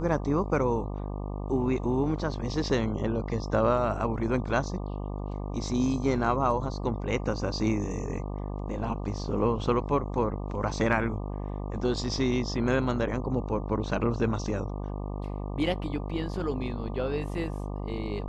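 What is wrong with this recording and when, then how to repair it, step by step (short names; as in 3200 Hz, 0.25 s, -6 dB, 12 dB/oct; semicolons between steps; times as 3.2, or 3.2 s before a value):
buzz 50 Hz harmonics 24 -34 dBFS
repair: de-hum 50 Hz, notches 24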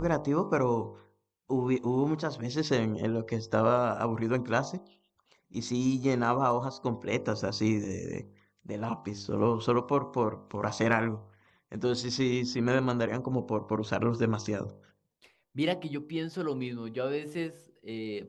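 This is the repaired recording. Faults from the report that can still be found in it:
none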